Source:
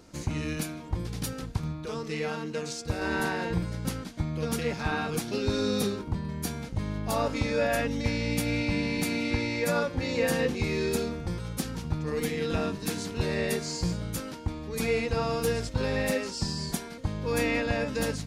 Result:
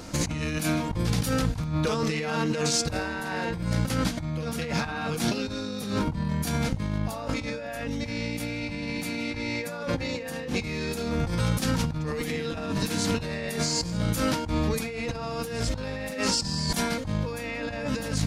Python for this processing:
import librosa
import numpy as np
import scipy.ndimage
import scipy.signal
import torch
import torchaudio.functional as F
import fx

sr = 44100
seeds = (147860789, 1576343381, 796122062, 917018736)

y = fx.peak_eq(x, sr, hz=390.0, db=-12.0, octaves=0.22)
y = fx.hum_notches(y, sr, base_hz=60, count=5)
y = fx.over_compress(y, sr, threshold_db=-38.0, ratio=-1.0)
y = y * librosa.db_to_amplitude(8.5)